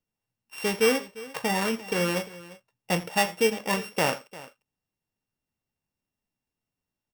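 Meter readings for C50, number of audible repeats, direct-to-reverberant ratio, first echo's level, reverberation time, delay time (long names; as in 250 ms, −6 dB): no reverb audible, 2, no reverb audible, −18.5 dB, no reverb audible, 84 ms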